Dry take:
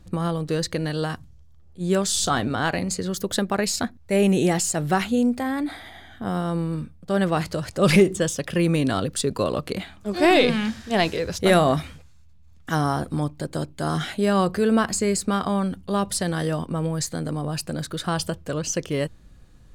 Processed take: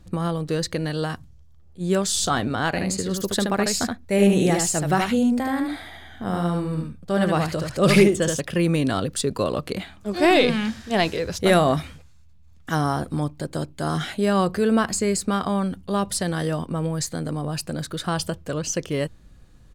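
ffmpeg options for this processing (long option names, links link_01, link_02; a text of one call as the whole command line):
ffmpeg -i in.wav -filter_complex "[0:a]asplit=3[link_01][link_02][link_03];[link_01]afade=type=out:start_time=2.76:duration=0.02[link_04];[link_02]aecho=1:1:75:0.631,afade=type=in:start_time=2.76:duration=0.02,afade=type=out:start_time=8.39:duration=0.02[link_05];[link_03]afade=type=in:start_time=8.39:duration=0.02[link_06];[link_04][link_05][link_06]amix=inputs=3:normalize=0" out.wav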